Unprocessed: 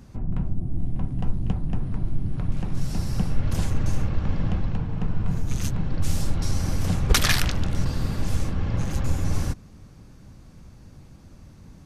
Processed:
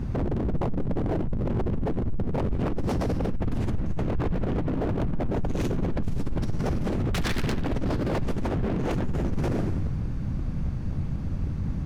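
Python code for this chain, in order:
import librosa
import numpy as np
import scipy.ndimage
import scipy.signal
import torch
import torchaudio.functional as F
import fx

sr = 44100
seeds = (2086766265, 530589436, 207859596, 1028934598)

p1 = fx.hum_notches(x, sr, base_hz=50, count=2)
p2 = np.clip(p1, -10.0 ** (-20.0 / 20.0), 10.0 ** (-20.0 / 20.0))
p3 = p1 + (p2 * 10.0 ** (-6.0 / 20.0))
p4 = fx.bass_treble(p3, sr, bass_db=9, treble_db=-13)
p5 = p4 + fx.echo_feedback(p4, sr, ms=89, feedback_pct=60, wet_db=-13.5, dry=0)
p6 = fx.over_compress(p5, sr, threshold_db=-17.0, ratio=-1.0)
y = 10.0 ** (-20.5 / 20.0) * (np.abs((p6 / 10.0 ** (-20.5 / 20.0) + 3.0) % 4.0 - 2.0) - 1.0)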